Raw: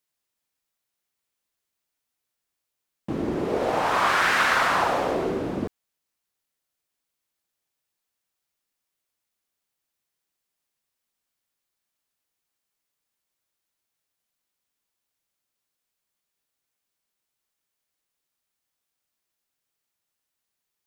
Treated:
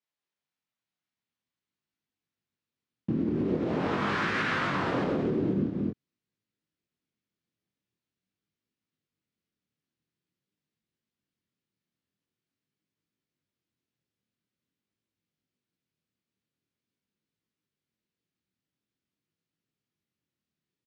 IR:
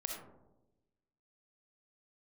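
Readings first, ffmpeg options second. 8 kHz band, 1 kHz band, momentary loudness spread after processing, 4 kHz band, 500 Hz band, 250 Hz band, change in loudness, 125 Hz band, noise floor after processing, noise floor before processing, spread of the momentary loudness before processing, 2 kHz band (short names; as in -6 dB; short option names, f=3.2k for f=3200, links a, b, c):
under -15 dB, -10.0 dB, 6 LU, -9.0 dB, -5.0 dB, +2.5 dB, -6.0 dB, +4.0 dB, under -85 dBFS, -83 dBFS, 11 LU, -8.0 dB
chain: -filter_complex "[0:a]asplit=2[a][b];[b]aecho=0:1:229:0.473[c];[a][c]amix=inputs=2:normalize=0,asubboost=boost=11.5:cutoff=230,flanger=delay=18.5:depth=7.9:speed=0.46,alimiter=limit=-15.5dB:level=0:latency=1:release=131,highpass=150,lowpass=4.2k,volume=-2.5dB"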